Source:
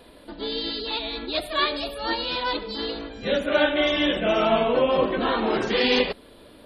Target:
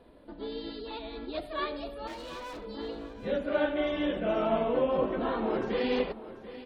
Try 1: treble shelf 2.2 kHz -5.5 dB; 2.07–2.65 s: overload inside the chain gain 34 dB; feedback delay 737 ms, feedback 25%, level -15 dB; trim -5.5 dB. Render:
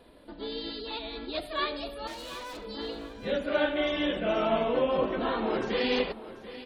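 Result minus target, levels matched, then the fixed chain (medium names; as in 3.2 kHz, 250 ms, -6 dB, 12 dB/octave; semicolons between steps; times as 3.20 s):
4 kHz band +5.5 dB
treble shelf 2.2 kHz -16 dB; 2.07–2.65 s: overload inside the chain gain 34 dB; feedback delay 737 ms, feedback 25%, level -15 dB; trim -5.5 dB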